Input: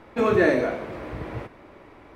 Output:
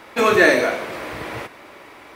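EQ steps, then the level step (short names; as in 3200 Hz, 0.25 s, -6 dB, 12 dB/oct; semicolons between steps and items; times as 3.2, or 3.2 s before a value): tilt +3.5 dB/oct; +7.5 dB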